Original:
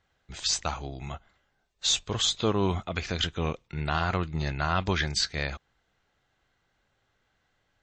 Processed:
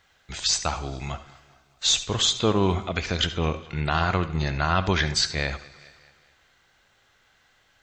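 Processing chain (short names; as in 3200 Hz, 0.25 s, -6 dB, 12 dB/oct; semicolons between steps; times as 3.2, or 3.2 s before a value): darkening echo 0.209 s, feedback 48%, low-pass 4900 Hz, level -23.5 dB; on a send at -12.5 dB: reverb, pre-delay 64 ms; on the sum: mismatched tape noise reduction encoder only; gain +4 dB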